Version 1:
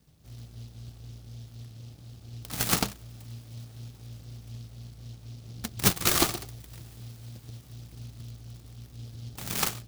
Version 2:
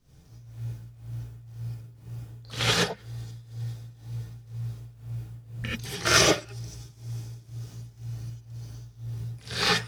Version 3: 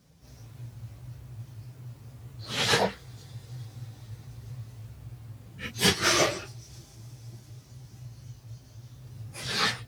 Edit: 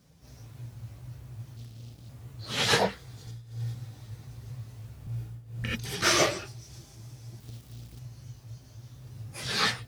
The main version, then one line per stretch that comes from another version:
3
0:01.57–0:02.09: punch in from 1
0:03.27–0:03.75: punch in from 2
0:05.07–0:06.02: punch in from 2
0:07.40–0:07.99: punch in from 1

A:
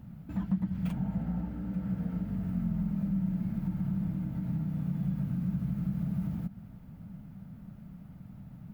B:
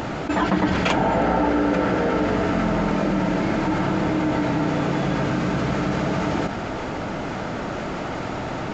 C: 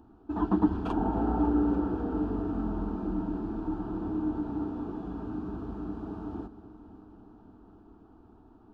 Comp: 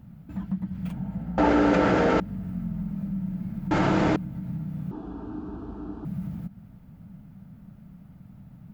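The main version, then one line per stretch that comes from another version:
A
0:01.38–0:02.20: punch in from B
0:03.71–0:04.16: punch in from B
0:04.91–0:06.05: punch in from C

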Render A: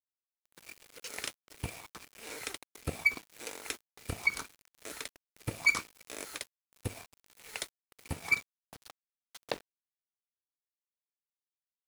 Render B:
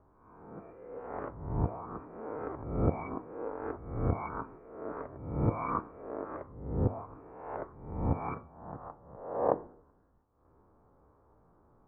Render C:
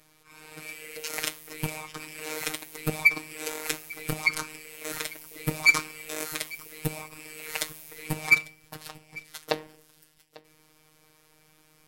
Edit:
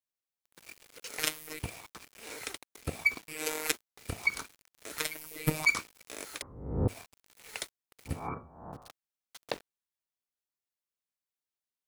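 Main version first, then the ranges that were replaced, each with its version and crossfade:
A
0:01.19–0:01.59: punch in from C
0:03.28–0:03.72: punch in from C
0:04.98–0:05.65: punch in from C
0:06.42–0:06.88: punch in from B
0:08.17–0:08.80: punch in from B, crossfade 0.24 s

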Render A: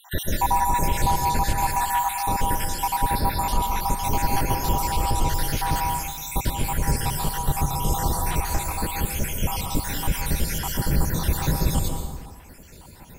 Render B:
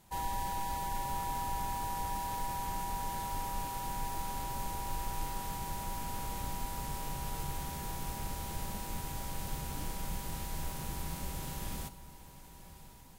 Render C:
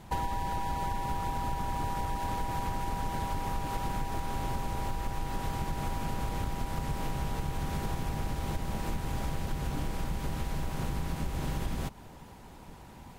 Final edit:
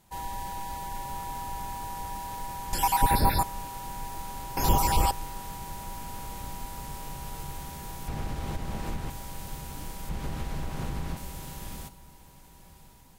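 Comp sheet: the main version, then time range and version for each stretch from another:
B
0:02.73–0:03.43: punch in from A
0:04.57–0:05.11: punch in from A
0:08.08–0:09.10: punch in from C
0:10.09–0:11.17: punch in from C

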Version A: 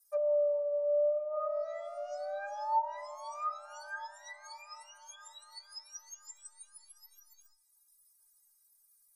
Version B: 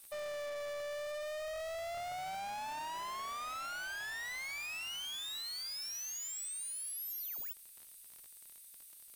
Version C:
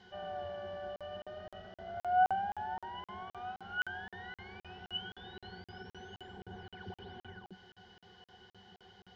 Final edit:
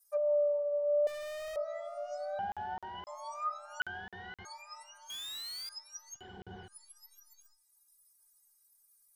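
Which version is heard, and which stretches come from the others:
A
0:01.07–0:01.56: punch in from B
0:02.39–0:03.07: punch in from C
0:03.80–0:04.45: punch in from C
0:05.10–0:05.69: punch in from B
0:06.19–0:06.68: punch in from C, crossfade 0.10 s

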